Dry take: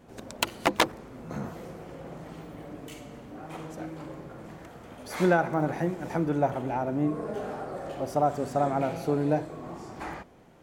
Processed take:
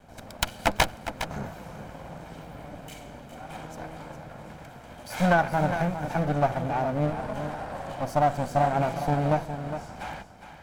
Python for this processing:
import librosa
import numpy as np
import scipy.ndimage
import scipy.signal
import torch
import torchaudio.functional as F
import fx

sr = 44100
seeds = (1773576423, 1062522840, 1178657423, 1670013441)

y = fx.lower_of_two(x, sr, delay_ms=1.3)
y = y + 10.0 ** (-10.0 / 20.0) * np.pad(y, (int(410 * sr / 1000.0), 0))[:len(y)]
y = F.gain(torch.from_numpy(y), 2.0).numpy()